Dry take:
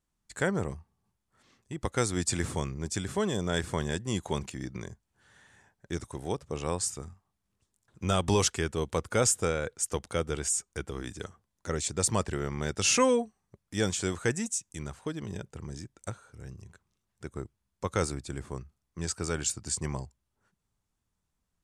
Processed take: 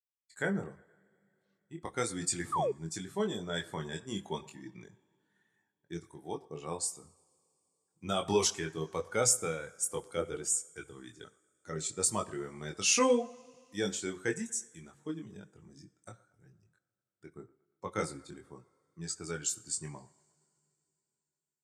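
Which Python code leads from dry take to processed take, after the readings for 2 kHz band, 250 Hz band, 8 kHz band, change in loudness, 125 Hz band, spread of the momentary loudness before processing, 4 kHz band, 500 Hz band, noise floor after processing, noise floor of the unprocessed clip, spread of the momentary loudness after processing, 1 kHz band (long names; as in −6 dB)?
−4.0 dB, −5.0 dB, −2.0 dB, −2.5 dB, −10.0 dB, 17 LU, −3.0 dB, −3.5 dB, below −85 dBFS, −82 dBFS, 21 LU, −3.0 dB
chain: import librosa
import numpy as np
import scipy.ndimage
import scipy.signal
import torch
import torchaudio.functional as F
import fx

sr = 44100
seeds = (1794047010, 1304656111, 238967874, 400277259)

p1 = fx.bin_expand(x, sr, power=1.5)
p2 = scipy.signal.sosfilt(scipy.signal.butter(2, 170.0, 'highpass', fs=sr, output='sos'), p1)
p3 = fx.high_shelf(p2, sr, hz=8700.0, db=4.5)
p4 = fx.rev_double_slope(p3, sr, seeds[0], early_s=0.52, late_s=3.5, knee_db=-21, drr_db=15.5)
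p5 = fx.chorus_voices(p4, sr, voices=6, hz=0.81, base_ms=22, depth_ms=4.1, mix_pct=40)
p6 = p5 + fx.echo_wet_bandpass(p5, sr, ms=117, feedback_pct=51, hz=990.0, wet_db=-21.5, dry=0)
p7 = fx.spec_paint(p6, sr, seeds[1], shape='fall', start_s=2.52, length_s=0.2, low_hz=380.0, high_hz=1300.0, level_db=-32.0)
y = p7 * librosa.db_to_amplitude(2.0)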